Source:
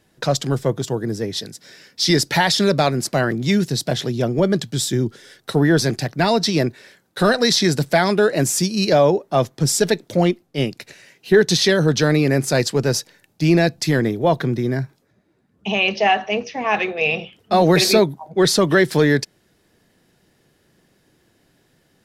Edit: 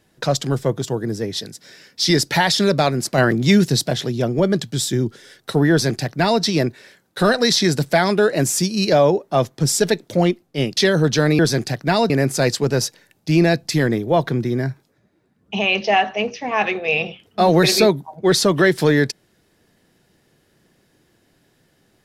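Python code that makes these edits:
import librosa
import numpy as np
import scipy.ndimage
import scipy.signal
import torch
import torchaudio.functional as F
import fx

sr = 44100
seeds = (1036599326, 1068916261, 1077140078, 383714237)

y = fx.edit(x, sr, fx.clip_gain(start_s=3.18, length_s=0.69, db=4.0),
    fx.duplicate(start_s=5.71, length_s=0.71, to_s=12.23),
    fx.cut(start_s=10.77, length_s=0.84), tone=tone)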